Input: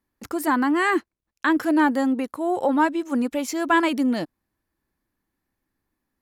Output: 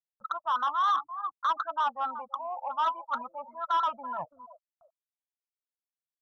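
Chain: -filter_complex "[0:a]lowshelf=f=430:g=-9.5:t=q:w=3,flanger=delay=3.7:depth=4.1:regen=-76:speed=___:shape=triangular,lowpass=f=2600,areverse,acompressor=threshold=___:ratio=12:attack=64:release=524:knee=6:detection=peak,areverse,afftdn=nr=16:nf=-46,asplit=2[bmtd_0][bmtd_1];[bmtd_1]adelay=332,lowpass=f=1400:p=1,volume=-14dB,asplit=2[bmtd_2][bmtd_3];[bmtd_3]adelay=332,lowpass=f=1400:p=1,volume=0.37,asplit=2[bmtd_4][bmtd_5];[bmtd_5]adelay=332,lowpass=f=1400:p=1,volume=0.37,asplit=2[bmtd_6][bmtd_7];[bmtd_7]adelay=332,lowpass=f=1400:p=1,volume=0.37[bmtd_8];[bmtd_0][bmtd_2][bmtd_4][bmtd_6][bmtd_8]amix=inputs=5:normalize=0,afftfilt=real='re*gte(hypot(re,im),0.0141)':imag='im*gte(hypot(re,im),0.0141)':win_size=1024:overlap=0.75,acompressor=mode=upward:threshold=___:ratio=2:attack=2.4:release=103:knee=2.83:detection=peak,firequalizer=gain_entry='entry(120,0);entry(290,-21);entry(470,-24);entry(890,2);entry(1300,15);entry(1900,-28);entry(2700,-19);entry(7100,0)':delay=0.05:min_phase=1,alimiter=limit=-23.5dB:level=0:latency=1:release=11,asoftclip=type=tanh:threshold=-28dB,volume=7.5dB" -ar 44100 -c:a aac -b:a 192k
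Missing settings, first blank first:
0.57, -32dB, -44dB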